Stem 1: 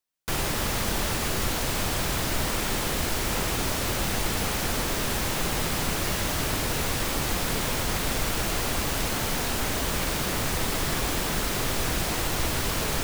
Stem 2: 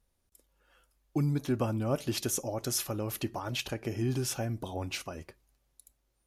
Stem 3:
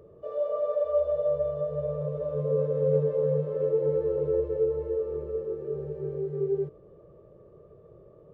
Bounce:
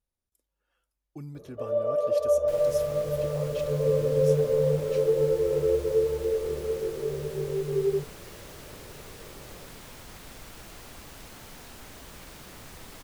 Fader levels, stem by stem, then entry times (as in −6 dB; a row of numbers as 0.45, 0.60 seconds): −18.5, −12.0, +2.0 decibels; 2.20, 0.00, 1.35 seconds